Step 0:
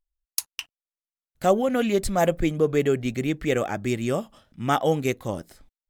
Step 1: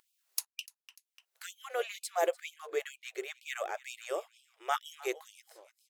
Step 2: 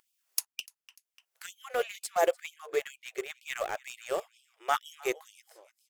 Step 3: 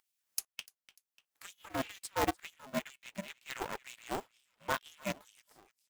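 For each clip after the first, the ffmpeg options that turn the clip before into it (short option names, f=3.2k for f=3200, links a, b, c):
-af "aecho=1:1:296|592:0.1|0.021,acompressor=mode=upward:threshold=-35dB:ratio=2.5,afftfilt=real='re*gte(b*sr/1024,320*pow(2400/320,0.5+0.5*sin(2*PI*2.1*pts/sr)))':imag='im*gte(b*sr/1024,320*pow(2400/320,0.5+0.5*sin(2*PI*2.1*pts/sr)))':win_size=1024:overlap=0.75,volume=-7.5dB"
-filter_complex "[0:a]equalizer=f=4k:w=7.8:g=-5,asplit=2[a][b];[b]aeval=exprs='val(0)*gte(abs(val(0)),0.0211)':c=same,volume=-5dB[c];[a][c]amix=inputs=2:normalize=0"
-af "aeval=exprs='val(0)*sgn(sin(2*PI*200*n/s))':c=same,volume=-6dB"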